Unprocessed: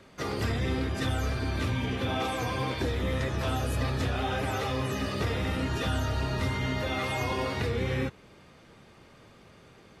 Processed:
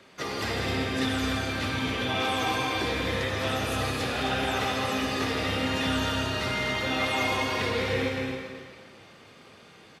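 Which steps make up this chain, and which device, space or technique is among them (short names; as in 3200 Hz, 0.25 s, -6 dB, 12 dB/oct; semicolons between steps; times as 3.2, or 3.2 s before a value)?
stadium PA (HPF 220 Hz 6 dB/oct; bell 3200 Hz +4 dB 1.9 oct; loudspeakers at several distances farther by 55 m -9 dB, 73 m -11 dB, 90 m -7 dB; reverb RT60 1.9 s, pre-delay 50 ms, DRR 3 dB)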